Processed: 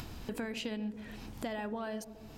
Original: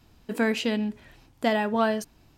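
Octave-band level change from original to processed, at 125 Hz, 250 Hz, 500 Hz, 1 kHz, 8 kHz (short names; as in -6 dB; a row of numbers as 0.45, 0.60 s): -7.0, -11.5, -13.5, -14.5, -7.5 dB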